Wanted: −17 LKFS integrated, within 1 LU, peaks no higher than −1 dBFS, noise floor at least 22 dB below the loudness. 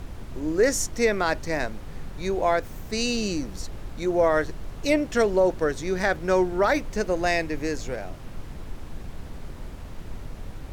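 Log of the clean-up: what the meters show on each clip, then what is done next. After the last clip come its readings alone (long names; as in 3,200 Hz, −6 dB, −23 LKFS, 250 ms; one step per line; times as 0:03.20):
background noise floor −39 dBFS; target noise floor −47 dBFS; integrated loudness −25.0 LKFS; sample peak −9.0 dBFS; target loudness −17.0 LKFS
→ noise reduction from a noise print 8 dB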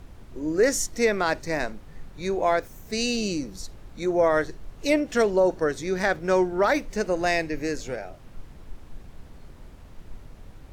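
background noise floor −46 dBFS; target noise floor −47 dBFS
→ noise reduction from a noise print 6 dB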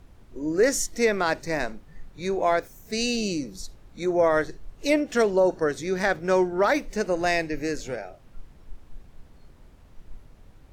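background noise floor −52 dBFS; integrated loudness −25.0 LKFS; sample peak −10.0 dBFS; target loudness −17.0 LKFS
→ level +8 dB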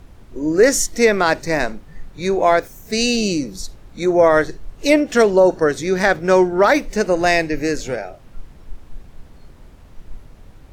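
integrated loudness −17.0 LKFS; sample peak −2.0 dBFS; background noise floor −44 dBFS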